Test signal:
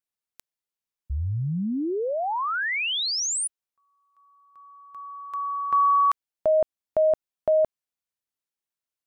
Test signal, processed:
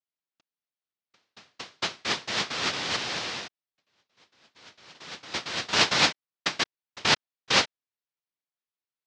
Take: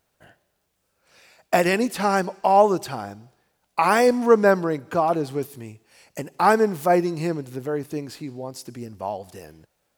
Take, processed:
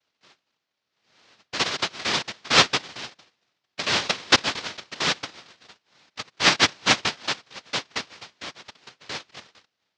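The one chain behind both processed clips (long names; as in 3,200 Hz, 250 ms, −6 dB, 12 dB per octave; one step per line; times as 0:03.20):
auto-filter high-pass saw up 4.4 Hz 250–3,300 Hz
cochlear-implant simulation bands 1
low-pass filter 5,100 Hz 24 dB per octave
level −4 dB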